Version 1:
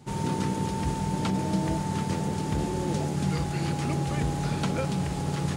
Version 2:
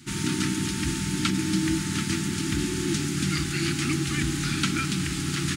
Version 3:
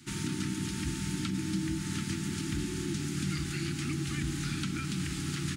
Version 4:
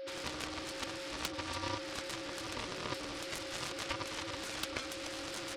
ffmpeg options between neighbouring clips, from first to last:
-af "firequalizer=gain_entry='entry(170,0);entry(330,9);entry(500,-29);entry(1300,8);entry(2300,11)':delay=0.05:min_phase=1,volume=-1dB"
-filter_complex "[0:a]acrossover=split=240[a][b];[b]acompressor=threshold=-31dB:ratio=6[c];[a][c]amix=inputs=2:normalize=0,volume=-5dB"
-af "afftfilt=real='re*between(b*sr/4096,280,5500)':imag='im*between(b*sr/4096,280,5500)':win_size=4096:overlap=0.75,aeval=exprs='val(0)+0.00794*sin(2*PI*540*n/s)':c=same,aeval=exprs='0.0841*(cos(1*acos(clip(val(0)/0.0841,-1,1)))-cos(1*PI/2))+0.0237*(cos(7*acos(clip(val(0)/0.0841,-1,1)))-cos(7*PI/2))':c=same,volume=2.5dB"

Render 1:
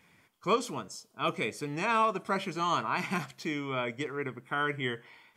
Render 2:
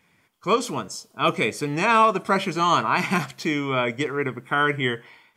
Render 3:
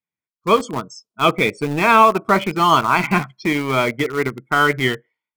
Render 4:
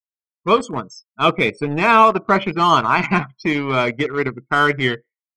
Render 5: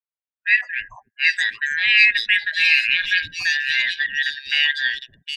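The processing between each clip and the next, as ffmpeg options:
-af "dynaudnorm=f=200:g=5:m=9.5dB"
-filter_complex "[0:a]afftdn=nr=34:nf=-31,asplit=2[a][b];[b]aeval=exprs='val(0)*gte(abs(val(0)),0.0668)':c=same,volume=-4dB[c];[a][c]amix=inputs=2:normalize=0,volume=1.5dB"
-af "afftdn=nr=31:nf=-39"
-filter_complex "[0:a]afftfilt=real='real(if(lt(b,272),68*(eq(floor(b/68),0)*3+eq(floor(b/68),1)*0+eq(floor(b/68),2)*1+eq(floor(b/68),3)*2)+mod(b,68),b),0)':imag='imag(if(lt(b,272),68*(eq(floor(b/68),0)*3+eq(floor(b/68),1)*0+eq(floor(b/68),2)*1+eq(floor(b/68),3)*2)+mod(b,68),b),0)':win_size=2048:overlap=0.75,acrossover=split=410|3500[a][b][c];[a]adelay=280[d];[c]adelay=760[e];[d][b][e]amix=inputs=3:normalize=0,volume=-1dB"

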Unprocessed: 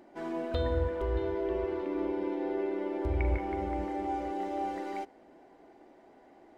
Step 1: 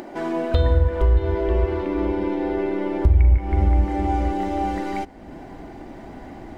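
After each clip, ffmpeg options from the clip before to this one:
-filter_complex "[0:a]asplit=2[a][b];[b]acompressor=mode=upward:threshold=-33dB:ratio=2.5,volume=-1dB[c];[a][c]amix=inputs=2:normalize=0,asubboost=boost=8.5:cutoff=150,acompressor=threshold=-19dB:ratio=4,volume=5.5dB"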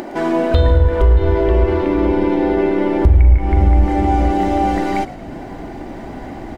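-filter_complex "[0:a]asplit=2[a][b];[b]alimiter=limit=-15.5dB:level=0:latency=1,volume=2dB[c];[a][c]amix=inputs=2:normalize=0,asplit=6[d][e][f][g][h][i];[e]adelay=113,afreqshift=-56,volume=-16dB[j];[f]adelay=226,afreqshift=-112,volume=-21dB[k];[g]adelay=339,afreqshift=-168,volume=-26.1dB[l];[h]adelay=452,afreqshift=-224,volume=-31.1dB[m];[i]adelay=565,afreqshift=-280,volume=-36.1dB[n];[d][j][k][l][m][n]amix=inputs=6:normalize=0,volume=1dB"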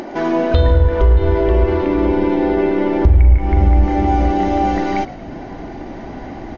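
-ar 24000 -c:a mp2 -b:a 64k

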